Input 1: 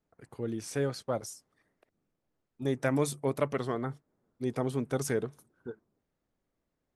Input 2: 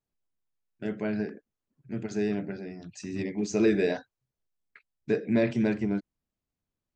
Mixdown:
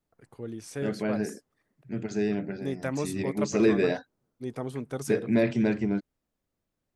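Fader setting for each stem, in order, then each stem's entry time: -3.0 dB, +1.0 dB; 0.00 s, 0.00 s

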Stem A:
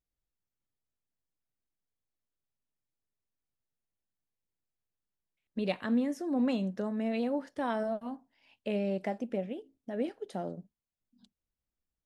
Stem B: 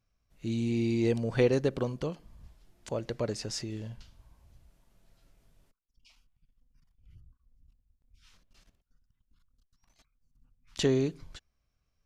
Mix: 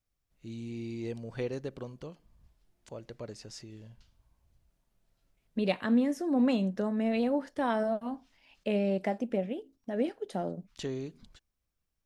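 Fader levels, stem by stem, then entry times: +3.0 dB, -10.0 dB; 0.00 s, 0.00 s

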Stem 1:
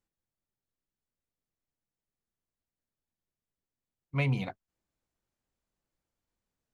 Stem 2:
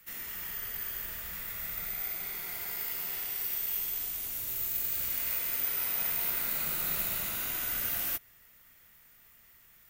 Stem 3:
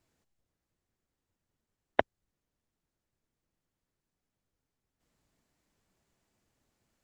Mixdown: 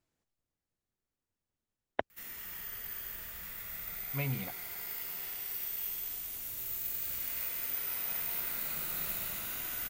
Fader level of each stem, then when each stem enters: -6.5 dB, -4.5 dB, -7.0 dB; 0.00 s, 2.10 s, 0.00 s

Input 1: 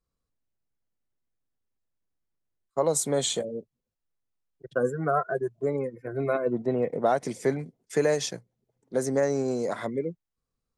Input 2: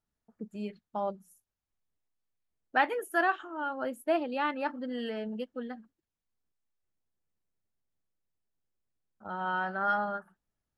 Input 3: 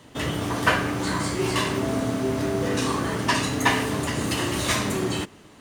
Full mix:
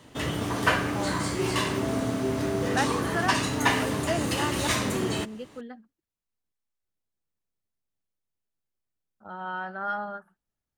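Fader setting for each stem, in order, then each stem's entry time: mute, -2.0 dB, -2.5 dB; mute, 0.00 s, 0.00 s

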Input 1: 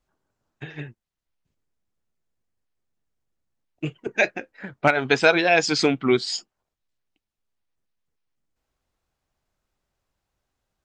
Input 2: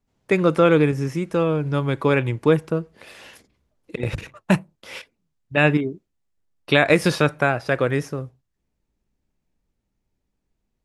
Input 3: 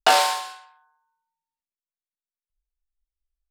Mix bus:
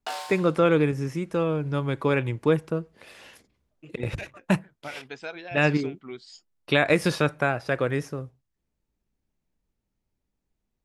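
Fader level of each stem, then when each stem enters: -20.0 dB, -4.5 dB, -16.5 dB; 0.00 s, 0.00 s, 0.00 s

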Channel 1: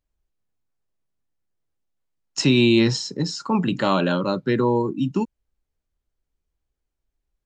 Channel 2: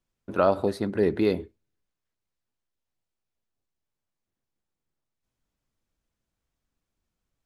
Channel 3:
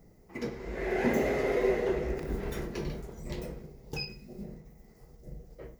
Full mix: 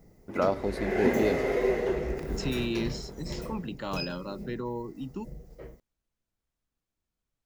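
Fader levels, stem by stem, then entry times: -14.5 dB, -5.0 dB, +1.0 dB; 0.00 s, 0.00 s, 0.00 s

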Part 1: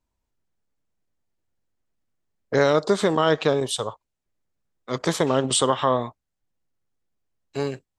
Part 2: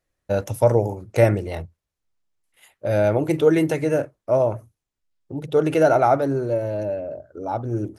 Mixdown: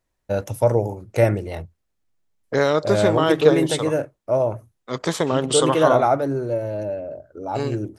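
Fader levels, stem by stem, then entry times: 0.0 dB, -1.0 dB; 0.00 s, 0.00 s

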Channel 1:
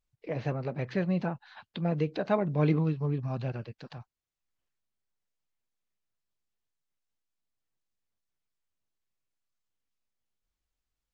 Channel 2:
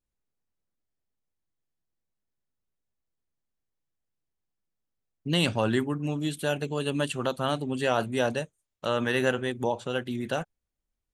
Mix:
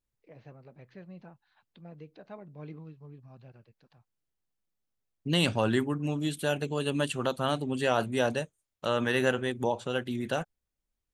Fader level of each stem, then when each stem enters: -18.5 dB, -1.0 dB; 0.00 s, 0.00 s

